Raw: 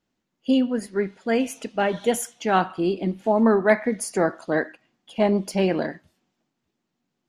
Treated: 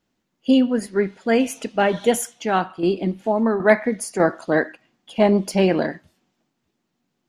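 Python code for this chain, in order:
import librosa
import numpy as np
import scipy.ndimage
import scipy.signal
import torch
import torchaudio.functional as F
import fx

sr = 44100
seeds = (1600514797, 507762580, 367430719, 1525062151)

y = fx.tremolo_shape(x, sr, shape='saw_down', hz=1.3, depth_pct=60, at=(2.06, 4.2))
y = y * librosa.db_to_amplitude(4.0)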